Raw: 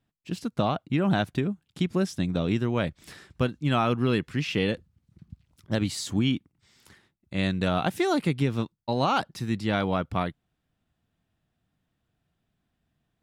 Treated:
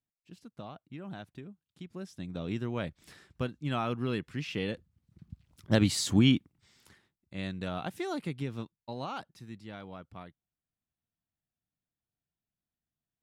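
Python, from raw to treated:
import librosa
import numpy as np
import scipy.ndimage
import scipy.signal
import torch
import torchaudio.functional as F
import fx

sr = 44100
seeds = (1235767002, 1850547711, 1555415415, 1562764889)

y = fx.gain(x, sr, db=fx.line((1.83, -19.0), (2.58, -8.0), (4.68, -8.0), (5.73, 2.0), (6.3, 2.0), (7.34, -10.5), (8.64, -10.5), (9.77, -19.0)))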